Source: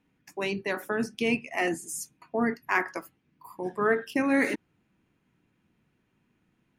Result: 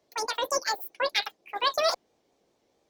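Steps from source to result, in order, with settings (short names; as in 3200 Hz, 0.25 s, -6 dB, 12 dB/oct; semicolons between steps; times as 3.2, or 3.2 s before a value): wow and flutter 98 cents; added harmonics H 6 -38 dB, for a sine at -10 dBFS; speed mistake 33 rpm record played at 78 rpm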